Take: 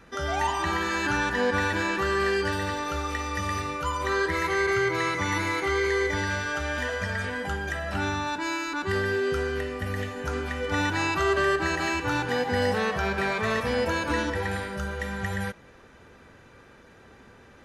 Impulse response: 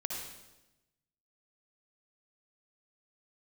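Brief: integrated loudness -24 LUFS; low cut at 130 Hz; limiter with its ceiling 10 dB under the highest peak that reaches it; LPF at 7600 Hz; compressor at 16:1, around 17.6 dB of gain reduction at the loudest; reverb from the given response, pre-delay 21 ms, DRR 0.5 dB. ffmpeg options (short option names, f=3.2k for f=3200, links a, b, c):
-filter_complex "[0:a]highpass=130,lowpass=7.6k,acompressor=threshold=-38dB:ratio=16,alimiter=level_in=14dB:limit=-24dB:level=0:latency=1,volume=-14dB,asplit=2[a][b];[1:a]atrim=start_sample=2205,adelay=21[c];[b][c]afir=irnorm=-1:irlink=0,volume=-2.5dB[d];[a][d]amix=inputs=2:normalize=0,volume=19.5dB"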